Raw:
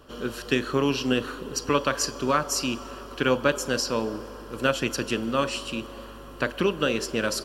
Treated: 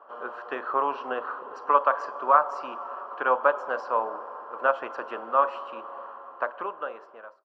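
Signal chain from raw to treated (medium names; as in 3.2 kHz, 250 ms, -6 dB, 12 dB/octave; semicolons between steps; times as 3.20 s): fade out at the end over 1.43 s; Butterworth band-pass 910 Hz, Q 1.5; trim +8.5 dB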